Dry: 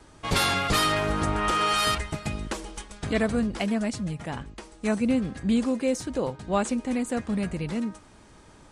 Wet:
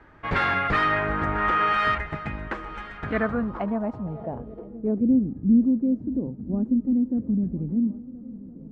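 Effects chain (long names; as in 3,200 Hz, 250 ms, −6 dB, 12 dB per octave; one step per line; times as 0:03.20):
feedback echo with a long and a short gap by turns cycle 1,365 ms, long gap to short 3 to 1, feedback 58%, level −19 dB
low-pass filter sweep 1,800 Hz → 260 Hz, 0:02.99–0:05.36
level −1.5 dB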